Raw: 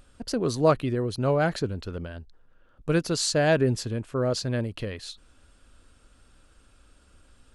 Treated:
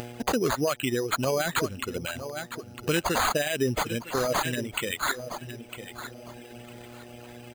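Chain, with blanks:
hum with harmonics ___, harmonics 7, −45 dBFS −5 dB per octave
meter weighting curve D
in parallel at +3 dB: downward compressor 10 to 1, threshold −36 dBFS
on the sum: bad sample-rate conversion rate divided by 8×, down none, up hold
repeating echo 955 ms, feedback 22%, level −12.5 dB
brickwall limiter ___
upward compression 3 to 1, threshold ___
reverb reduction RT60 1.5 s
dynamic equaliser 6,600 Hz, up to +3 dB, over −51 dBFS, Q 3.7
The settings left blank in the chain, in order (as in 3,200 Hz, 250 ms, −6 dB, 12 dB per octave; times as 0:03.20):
120 Hz, −15 dBFS, −34 dBFS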